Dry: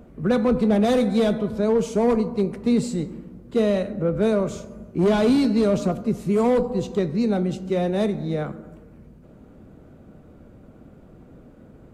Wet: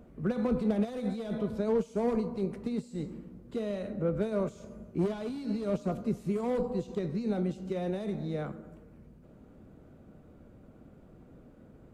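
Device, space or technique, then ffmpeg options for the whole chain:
de-esser from a sidechain: -filter_complex "[0:a]asplit=2[a][b];[b]highpass=5k,apad=whole_len=526507[c];[a][c]sidechaincompress=threshold=-51dB:ratio=20:attack=2.5:release=41,volume=-7dB"

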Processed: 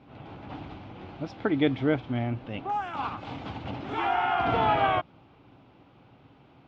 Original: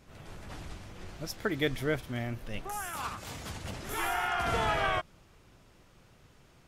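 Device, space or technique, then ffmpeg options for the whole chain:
guitar cabinet: -af "highpass=88,equalizer=f=120:t=q:w=4:g=4,equalizer=f=280:t=q:w=4:g=10,equalizer=f=810:t=q:w=4:g=8,equalizer=f=1.8k:t=q:w=4:g=-7,lowpass=f=3.4k:w=0.5412,lowpass=f=3.4k:w=1.3066,volume=3dB"

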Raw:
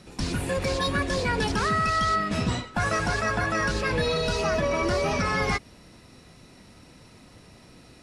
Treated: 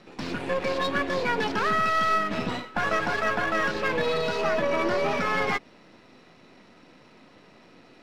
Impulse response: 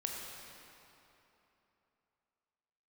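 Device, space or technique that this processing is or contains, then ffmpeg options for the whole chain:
crystal radio: -af "highpass=230,lowpass=3.3k,aeval=exprs='if(lt(val(0),0),0.447*val(0),val(0))':c=same,volume=3.5dB"

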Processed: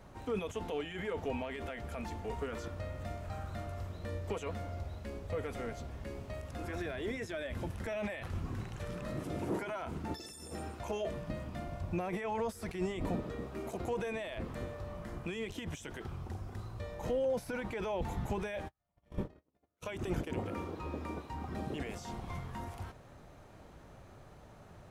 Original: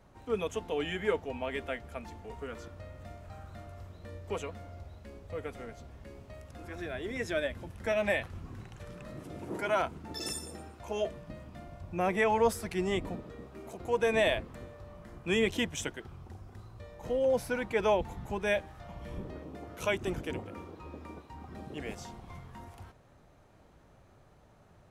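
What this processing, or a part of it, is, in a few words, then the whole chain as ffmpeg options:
de-esser from a sidechain: -filter_complex "[0:a]asplit=3[a][b][c];[a]afade=t=out:st=18.67:d=0.02[d];[b]agate=range=-46dB:threshold=-38dB:ratio=16:detection=peak,afade=t=in:st=18.67:d=0.02,afade=t=out:st=20.35:d=0.02[e];[c]afade=t=in:st=20.35:d=0.02[f];[d][e][f]amix=inputs=3:normalize=0,asplit=2[g][h];[h]highpass=f=6.8k:p=1,apad=whole_len=1098270[i];[g][i]sidechaincompress=threshold=-55dB:ratio=10:attack=0.5:release=30,volume=5.5dB"

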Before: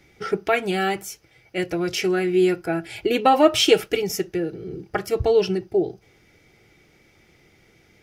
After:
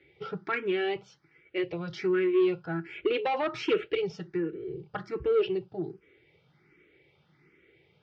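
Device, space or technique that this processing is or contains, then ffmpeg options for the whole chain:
barber-pole phaser into a guitar amplifier: -filter_complex "[0:a]asplit=2[a][b];[b]afreqshift=1.3[c];[a][c]amix=inputs=2:normalize=1,asoftclip=type=tanh:threshold=-17dB,highpass=93,equalizer=f=100:t=q:w=4:g=-7,equalizer=f=150:t=q:w=4:g=6,equalizer=f=220:t=q:w=4:g=-7,equalizer=f=390:t=q:w=4:g=4,equalizer=f=700:t=q:w=4:g=-9,lowpass=f=3.6k:w=0.5412,lowpass=f=3.6k:w=1.3066,volume=-3.5dB"

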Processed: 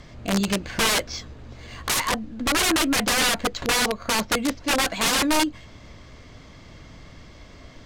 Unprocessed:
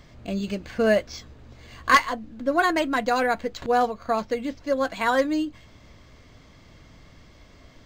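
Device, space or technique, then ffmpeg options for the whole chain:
overflowing digital effects unit: -af "aeval=exprs='(mod(11.2*val(0)+1,2)-1)/11.2':c=same,lowpass=12k,volume=5.5dB"

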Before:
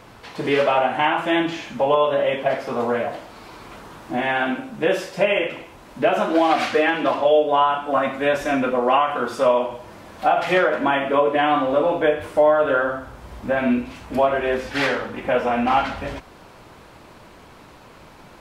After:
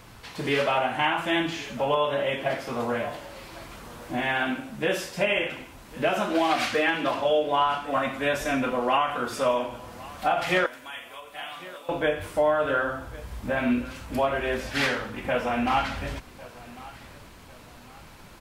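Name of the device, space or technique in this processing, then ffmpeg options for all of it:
smiley-face EQ: -filter_complex "[0:a]lowshelf=f=130:g=5,equalizer=f=500:t=o:w=2.6:g=-5.5,highshelf=f=7k:g=7.5,asettb=1/sr,asplit=3[a][b][c];[a]atrim=end=10.664[d];[b]atrim=start=10.66:end=11.89,asetpts=PTS-STARTPTS,afade=t=in:d=0.004:c=qsin,afade=t=out:st=1.226:d=0.004:c=qsin,aderivative[e];[c]atrim=start=11.886[f];[d][e]acrossfade=d=0.004:c1=hsin:c2=qsin[g];[g][f]acrossfade=d=0.004:c1=qsin:c2=hsin,aecho=1:1:1102|2204|3306:0.106|0.0381|0.0137,volume=-2dB"

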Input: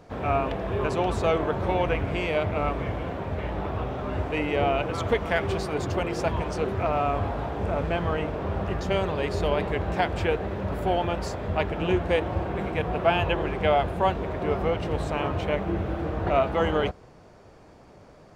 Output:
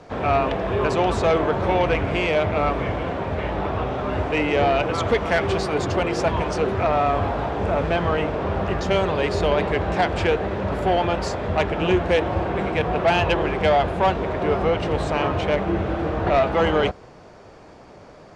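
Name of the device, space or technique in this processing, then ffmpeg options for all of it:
one-band saturation: -filter_complex "[0:a]lowpass=7.6k,acrossover=split=260|4200[a][b][c];[b]asoftclip=type=tanh:threshold=-19.5dB[d];[a][d][c]amix=inputs=3:normalize=0,lowshelf=f=220:g=-5.5,volume=7.5dB"

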